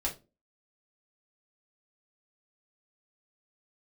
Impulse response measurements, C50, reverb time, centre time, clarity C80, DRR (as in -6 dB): 12.5 dB, no single decay rate, 16 ms, 20.5 dB, -3.0 dB